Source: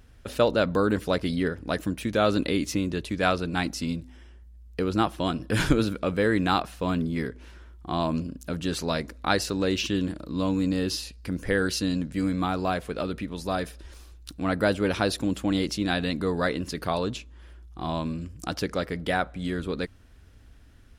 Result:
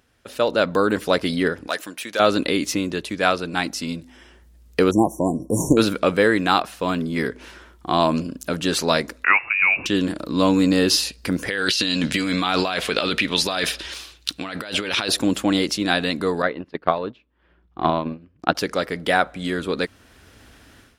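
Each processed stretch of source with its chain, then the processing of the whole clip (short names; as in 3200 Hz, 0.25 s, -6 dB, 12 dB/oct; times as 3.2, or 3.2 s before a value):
1.67–2.2 HPF 1000 Hz 6 dB/oct + hard clip -20 dBFS
4.91–5.77 brick-wall FIR band-stop 1100–5500 Hz + bell 1300 Hz -12.5 dB 1.5 oct
9.24–9.86 overdrive pedal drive 7 dB, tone 1300 Hz, clips at -7 dBFS + inverted band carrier 2700 Hz
11.48–15.09 bell 3300 Hz +13 dB 2 oct + negative-ratio compressor -30 dBFS
16.42–18.55 gate -32 dBFS, range -7 dB + transient shaper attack +11 dB, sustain -6 dB + air absorption 370 m
whole clip: HPF 350 Hz 6 dB/oct; AGC gain up to 15.5 dB; gain -1 dB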